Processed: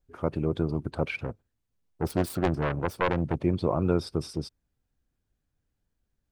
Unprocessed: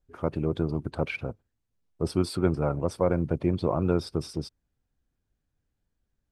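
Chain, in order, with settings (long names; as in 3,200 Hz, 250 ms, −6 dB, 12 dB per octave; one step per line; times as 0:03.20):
0:01.17–0:03.43: phase distortion by the signal itself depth 0.73 ms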